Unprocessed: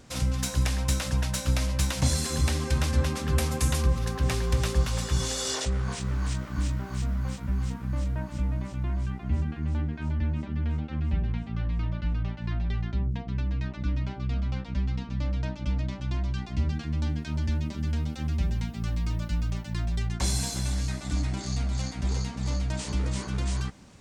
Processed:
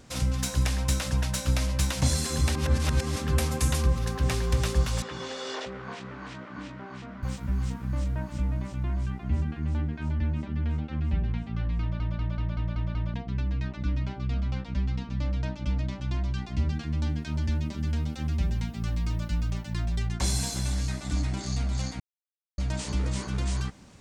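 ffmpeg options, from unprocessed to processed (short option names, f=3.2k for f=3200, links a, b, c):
-filter_complex "[0:a]asettb=1/sr,asplit=3[a][b][c];[a]atrim=end=5.024[d];[b]atrim=start=5.02:end=7.23,asetpts=PTS-STARTPTS,afade=t=in:d=0.004:c=qsin,afade=t=out:st=2.206:d=0.004:c=qsin,highpass=260,lowpass=2.9k[e];[c]atrim=start=7.226[f];[d][e]acrossfade=d=0.004:c1=hsin:c2=qsin[g];[g][f]acrossfade=d=0.004:c1=qsin:c2=hsin,asplit=12[h][i][j][k][l][m][n][o][p][q][r][s];[h]atrim=end=2.552[t];[i]atrim=start=2.548:end=3.162,asetpts=PTS-STARTPTS,areverse[u];[j]atrim=start=3.158:end=12.002[v];[k]atrim=start=11.808:end=12.002[w];[l]atrim=start=11.808:end=12.002[x];[m]atrim=start=11.808:end=12.002[y];[n]atrim=start=11.808:end=12.002[z];[o]atrim=start=11.808:end=12.002[aa];[p]atrim=start=11.808:end=12.002[ab];[q]atrim=start=13.138:end=22,asetpts=PTS-STARTPTS,afade=t=out:st=8.858:d=0.004:c=hsin[ac];[r]atrim=start=22:end=22.58,asetpts=PTS-STARTPTS,volume=0[ad];[s]atrim=start=22.58,asetpts=PTS-STARTPTS,afade=t=in:d=0.004:c=hsin[ae];[t][u]acrossfade=d=0.004:c1=hsin:c2=hsin[af];[af][v]acrossfade=d=0.004:c1=hsin:c2=hsin[ag];[ag][w]acrossfade=d=0.004:c1=hsin:c2=hsin[ah];[ah][x]acrossfade=d=0.004:c1=hsin:c2=hsin[ai];[ai][y]acrossfade=d=0.004:c1=hsin:c2=hsin[aj];[aj][z]acrossfade=d=0.004:c1=hsin:c2=hsin[ak];[ak][aa]acrossfade=d=0.004:c1=hsin:c2=hsin[al];[al][ab]acrossfade=d=0.004:c1=hsin:c2=hsin[am];[ac][ad][ae]concat=n=3:v=0:a=1[an];[am][an]acrossfade=d=0.004:c1=hsin:c2=hsin"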